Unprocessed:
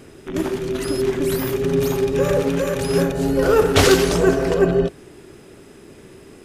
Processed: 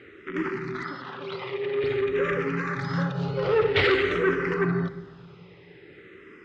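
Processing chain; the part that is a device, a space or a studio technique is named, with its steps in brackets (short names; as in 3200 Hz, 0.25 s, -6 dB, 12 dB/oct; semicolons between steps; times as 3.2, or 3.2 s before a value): barber-pole phaser into a guitar amplifier (endless phaser -0.5 Hz; soft clip -12 dBFS, distortion -15 dB; speaker cabinet 110–4100 Hz, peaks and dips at 120 Hz +4 dB, 260 Hz -8 dB, 650 Hz -10 dB, 1300 Hz +8 dB, 2000 Hz +10 dB); 0.83–1.84 three-band isolator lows -18 dB, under 260 Hz, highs -22 dB, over 4900 Hz; shoebox room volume 1500 m³, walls mixed, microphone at 0.4 m; gain -2.5 dB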